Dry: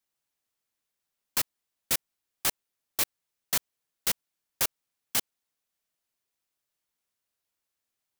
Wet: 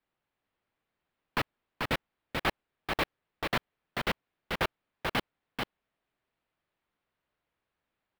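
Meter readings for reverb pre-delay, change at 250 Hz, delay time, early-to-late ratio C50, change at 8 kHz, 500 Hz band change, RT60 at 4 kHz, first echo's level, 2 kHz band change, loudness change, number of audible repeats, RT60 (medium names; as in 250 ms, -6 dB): no reverb, +9.5 dB, 438 ms, no reverb, -19.5 dB, +8.5 dB, no reverb, -4.0 dB, +5.5 dB, -4.5 dB, 1, no reverb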